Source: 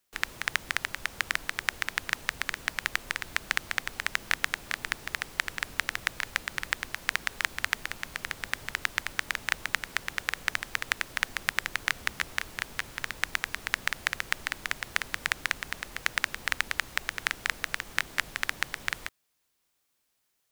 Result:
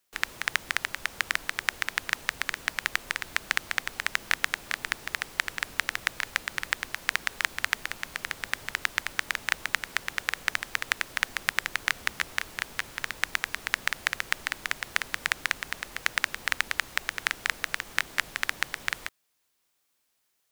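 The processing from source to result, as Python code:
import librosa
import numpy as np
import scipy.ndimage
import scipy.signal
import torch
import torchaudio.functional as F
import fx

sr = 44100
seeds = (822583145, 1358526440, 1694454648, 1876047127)

y = fx.low_shelf(x, sr, hz=210.0, db=-5.0)
y = y * 10.0 ** (1.5 / 20.0)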